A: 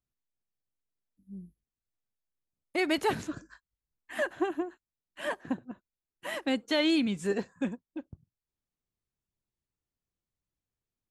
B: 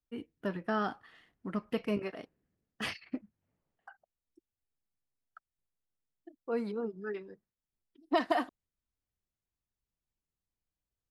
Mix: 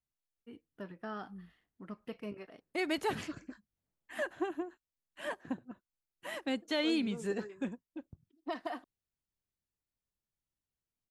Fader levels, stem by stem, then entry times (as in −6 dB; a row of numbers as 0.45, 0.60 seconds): −5.5, −10.0 decibels; 0.00, 0.35 seconds